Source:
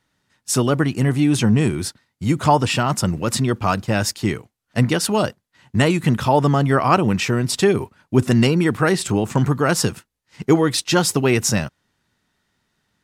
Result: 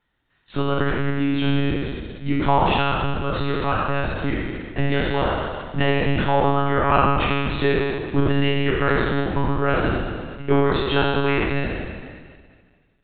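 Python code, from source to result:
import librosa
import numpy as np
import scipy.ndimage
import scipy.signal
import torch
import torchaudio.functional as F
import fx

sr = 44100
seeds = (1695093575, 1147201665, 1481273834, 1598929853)

y = fx.spec_trails(x, sr, decay_s=1.86)
y = fx.lpc_monotone(y, sr, seeds[0], pitch_hz=140.0, order=16)
y = y * 10.0 ** (-5.5 / 20.0)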